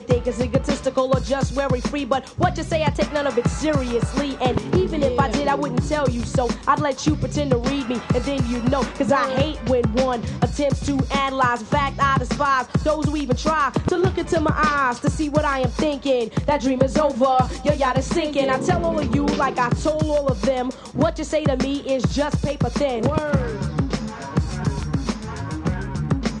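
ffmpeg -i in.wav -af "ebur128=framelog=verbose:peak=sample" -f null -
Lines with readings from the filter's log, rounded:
Integrated loudness:
  I:         -21.4 LUFS
  Threshold: -31.4 LUFS
Loudness range:
  LRA:         2.3 LU
  Threshold: -41.2 LUFS
  LRA low:   -22.5 LUFS
  LRA high:  -20.1 LUFS
Sample peak:
  Peak:       -3.9 dBFS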